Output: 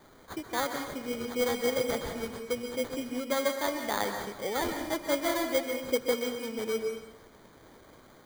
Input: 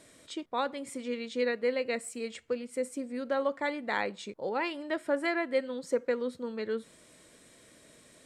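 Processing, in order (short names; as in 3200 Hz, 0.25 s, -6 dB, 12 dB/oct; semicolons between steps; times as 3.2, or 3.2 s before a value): high shelf 6800 Hz +6 dB; sample-rate reducer 2700 Hz, jitter 0%; plate-style reverb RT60 0.84 s, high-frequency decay 0.9×, pre-delay 0.115 s, DRR 5 dB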